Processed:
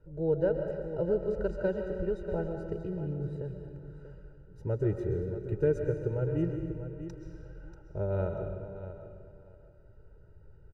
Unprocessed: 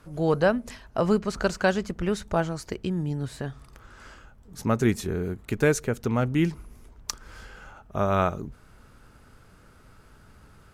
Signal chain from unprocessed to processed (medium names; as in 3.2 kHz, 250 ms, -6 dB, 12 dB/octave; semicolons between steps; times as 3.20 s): boxcar filter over 40 samples; comb 2.1 ms, depth 96%; feedback delay 638 ms, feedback 20%, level -12 dB; on a send at -4.5 dB: reverberation RT60 1.6 s, pre-delay 90 ms; on the sum: trim -6.5 dB